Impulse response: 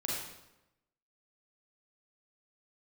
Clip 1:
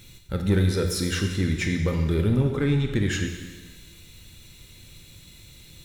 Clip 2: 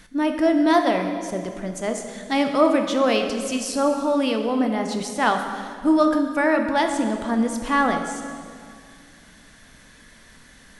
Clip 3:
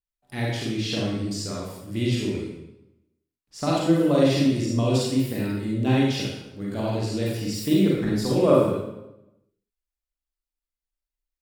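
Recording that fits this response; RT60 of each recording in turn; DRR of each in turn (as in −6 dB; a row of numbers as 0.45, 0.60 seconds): 3; 1.4, 2.2, 0.95 seconds; 3.5, 5.0, −5.0 decibels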